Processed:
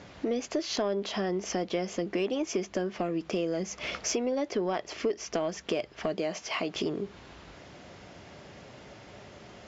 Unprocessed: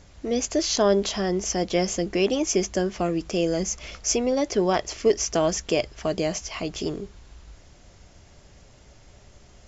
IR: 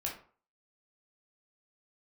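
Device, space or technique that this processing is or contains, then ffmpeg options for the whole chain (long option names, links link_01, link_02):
AM radio: -filter_complex "[0:a]asettb=1/sr,asplit=3[link_01][link_02][link_03];[link_01]atrim=end=6.164[link_04];[link_02]atrim=start=6.16:end=6.75,asetpts=PTS-STARTPTS,afade=type=in:duration=0.004:curve=qsin,afade=type=out:start_time=0.586:duration=0.004:curve=qsin,highpass=frequency=230:poles=1[link_05];[link_03]atrim=start=6.746[link_06];[link_04][link_05]acrossfade=duration=0.004:curve1=hsin:curve2=qsin[link_07];[link_07][link_06]acrossfade=duration=0.004:curve1=qsin:curve2=hsin,highpass=160,lowpass=3600,acompressor=threshold=-37dB:ratio=4,asoftclip=type=tanh:threshold=-24.5dB,volume=8dB"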